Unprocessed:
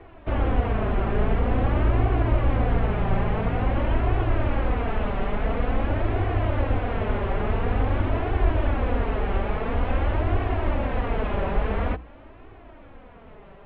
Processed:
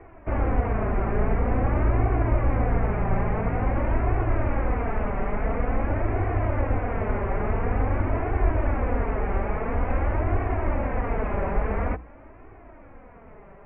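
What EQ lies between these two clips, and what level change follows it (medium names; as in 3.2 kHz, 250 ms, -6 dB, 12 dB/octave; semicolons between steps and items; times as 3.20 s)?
elliptic low-pass 2.3 kHz, stop band 80 dB; 0.0 dB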